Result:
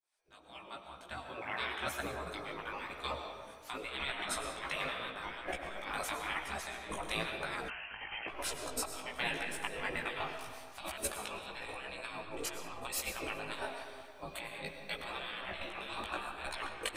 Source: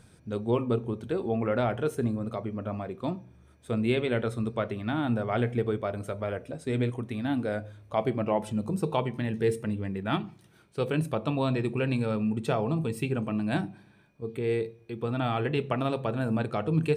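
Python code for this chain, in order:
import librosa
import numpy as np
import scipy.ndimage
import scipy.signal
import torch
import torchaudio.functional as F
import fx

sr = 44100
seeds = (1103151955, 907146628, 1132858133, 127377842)

p1 = fx.fade_in_head(x, sr, length_s=5.06)
p2 = fx.auto_swell(p1, sr, attack_ms=494.0, at=(8.82, 9.62), fade=0.02)
p3 = fx.over_compress(p2, sr, threshold_db=-33.0, ratio=-0.5)
p4 = fx.spec_gate(p3, sr, threshold_db=-20, keep='weak')
p5 = p4 + fx.echo_feedback(p4, sr, ms=192, feedback_pct=45, wet_db=-21.0, dry=0)
p6 = fx.rev_freeverb(p5, sr, rt60_s=1.9, hf_ratio=0.55, predelay_ms=70, drr_db=5.0)
p7 = fx.freq_invert(p6, sr, carrier_hz=3100, at=(7.68, 8.28))
p8 = fx.chorus_voices(p7, sr, voices=2, hz=1.0, base_ms=17, depth_ms=3.0, mix_pct=45)
y = F.gain(torch.from_numpy(p8), 12.5).numpy()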